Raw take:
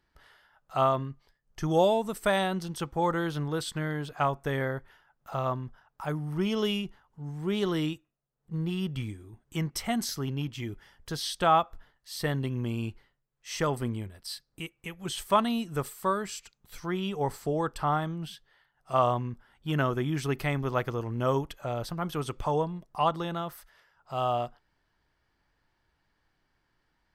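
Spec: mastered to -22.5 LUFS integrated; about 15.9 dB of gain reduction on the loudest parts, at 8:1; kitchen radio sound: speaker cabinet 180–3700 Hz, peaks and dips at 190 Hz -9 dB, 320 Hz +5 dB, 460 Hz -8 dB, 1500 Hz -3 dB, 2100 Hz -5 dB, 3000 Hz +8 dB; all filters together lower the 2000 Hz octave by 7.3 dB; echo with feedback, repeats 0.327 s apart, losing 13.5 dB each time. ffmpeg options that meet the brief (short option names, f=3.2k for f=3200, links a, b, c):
-af "equalizer=f=2k:t=o:g=-8,acompressor=threshold=-36dB:ratio=8,highpass=180,equalizer=f=190:t=q:w=4:g=-9,equalizer=f=320:t=q:w=4:g=5,equalizer=f=460:t=q:w=4:g=-8,equalizer=f=1.5k:t=q:w=4:g=-3,equalizer=f=2.1k:t=q:w=4:g=-5,equalizer=f=3k:t=q:w=4:g=8,lowpass=f=3.7k:w=0.5412,lowpass=f=3.7k:w=1.3066,aecho=1:1:327|654:0.211|0.0444,volume=21dB"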